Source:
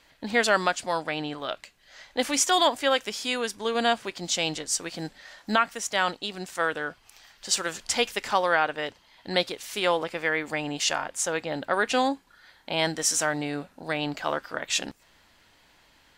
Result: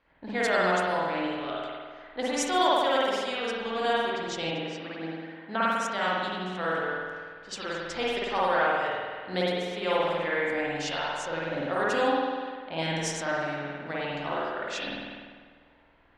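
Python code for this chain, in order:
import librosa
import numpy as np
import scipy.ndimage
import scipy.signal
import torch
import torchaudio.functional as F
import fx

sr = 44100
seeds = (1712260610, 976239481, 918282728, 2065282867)

y = fx.rev_spring(x, sr, rt60_s=1.7, pass_ms=(49,), chirp_ms=50, drr_db=-7.0)
y = fx.dynamic_eq(y, sr, hz=2500.0, q=0.78, threshold_db=-30.0, ratio=4.0, max_db=-3)
y = fx.env_lowpass(y, sr, base_hz=1800.0, full_db=-14.5)
y = fx.bandpass_edges(y, sr, low_hz=fx.line((4.5, 130.0), (5.61, 250.0)), high_hz=3200.0, at=(4.5, 5.61), fade=0.02)
y = y * librosa.db_to_amplitude(-7.5)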